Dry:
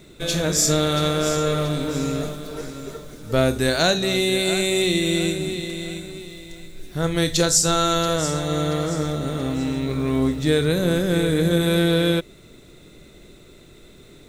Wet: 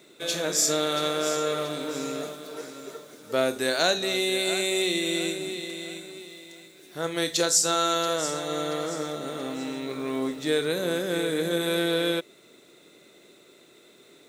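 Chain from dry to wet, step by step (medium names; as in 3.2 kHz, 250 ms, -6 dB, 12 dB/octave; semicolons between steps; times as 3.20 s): high-pass 330 Hz 12 dB/octave; trim -3.5 dB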